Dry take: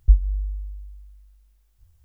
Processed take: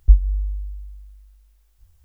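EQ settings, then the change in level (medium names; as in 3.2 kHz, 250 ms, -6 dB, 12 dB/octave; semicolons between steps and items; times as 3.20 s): peaking EQ 140 Hz -10 dB 1.2 oct; +4.0 dB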